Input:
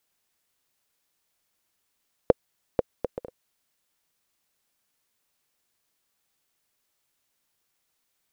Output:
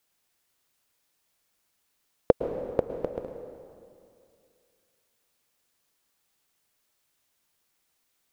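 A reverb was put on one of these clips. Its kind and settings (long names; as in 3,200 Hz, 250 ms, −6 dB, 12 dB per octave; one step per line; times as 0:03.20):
dense smooth reverb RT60 2.4 s, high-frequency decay 0.8×, pre-delay 100 ms, DRR 7 dB
level +1 dB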